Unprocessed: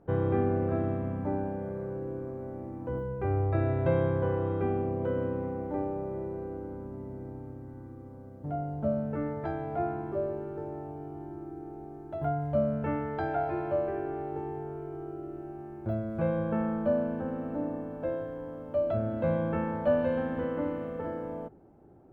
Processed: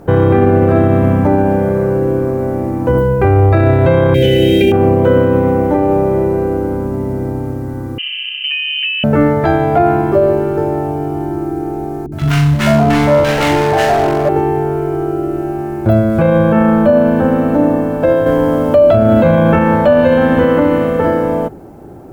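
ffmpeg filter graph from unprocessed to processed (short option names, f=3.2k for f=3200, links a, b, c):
-filter_complex "[0:a]asettb=1/sr,asplit=3[a][b][c];[a]atrim=end=4.144[d];[b]atrim=start=4.14:end=4.72,asetpts=PTS-STARTPTS,afade=t=in:d=0.004:c=qsin,afade=t=out:st=0.576:d=0.004:c=qsin,asuperstop=centerf=1100:order=4:qfactor=0.71,highshelf=f=1.7k:t=q:w=1.5:g=12.5,asplit=2[e][f];[f]adelay=15,volume=-3.5dB[g];[e][g]amix=inputs=2:normalize=0,atrim=end_sample=25578[h];[c]atrim=start=4.716[i];[d][h]acrossfade=d=0.004:c1=hsin:c2=qsin[j];[j][i]acrossfade=d=0.004:c1=qsin:c2=hsin,asettb=1/sr,asplit=3[k][l][m];[k]atrim=end=7.984[n];[l]atrim=start=7.98:end=9.04,asetpts=PTS-STARTPTS,afade=t=in:d=0.004:c=qsin,afade=t=out:st=1.056:d=0.004:c=qsin,lowshelf=f=170:g=-9.5,acompressor=threshold=-41dB:ratio=12:attack=3.2:release=140:knee=1:detection=peak,lowpass=f=2.7k:t=q:w=0.5098,lowpass=f=2.7k:t=q:w=0.6013,lowpass=f=2.7k:t=q:w=0.9,lowpass=f=2.7k:t=q:w=2.563,afreqshift=-3200[o];[m]atrim=start=9.036[p];[n][o]acrossfade=d=0.004:c1=hsin:c2=qsin[q];[q][p]acrossfade=d=0.004:c1=qsin:c2=hsin,asettb=1/sr,asplit=3[r][s][t];[r]atrim=end=12.064[u];[s]atrim=start=12.06:end=14.29,asetpts=PTS-STARTPTS,afade=t=in:d=0.004:c=qsin,afade=t=out:st=2.226:d=0.004:c=qsin,volume=30.5dB,asoftclip=hard,volume=-30.5dB,asplit=2[v][w];[w]adelay=41,volume=-5dB[x];[v][x]amix=inputs=2:normalize=0,atrim=end_sample=98343,acrossover=split=320|1100[y][z][aa];[aa]adelay=60[ab];[z]adelay=540[ac];[y][ac][ab]amix=inputs=3:normalize=0,atrim=end_sample=98343[ad];[t]atrim=start=14.286[ae];[u][ad]acrossfade=d=0.004:c1=hsin:c2=qsin[af];[af][ae]acrossfade=d=0.004:c1=qsin:c2=hsin,asettb=1/sr,asplit=3[ag][ah][ai];[ag]atrim=end=18.264[aj];[ah]atrim=start=18.26:end=19.59,asetpts=PTS-STARTPTS,afade=t=in:d=0.004:c=qsin,afade=t=out:st=1.326:d=0.004:c=qsin,acontrast=35,asplit=2[ak][al];[al]adelay=41,volume=-12.5dB[am];[ak][am]amix=inputs=2:normalize=0,atrim=end_sample=58653[an];[ai]atrim=start=19.586[ao];[aj][an]acrossfade=d=0.004:c1=hsin:c2=qsin[ap];[ap][ao]acrossfade=d=0.004:c1=qsin:c2=hsin,highshelf=f=3.1k:g=11,alimiter=level_in=23dB:limit=-1dB:release=50:level=0:latency=1,volume=-1dB"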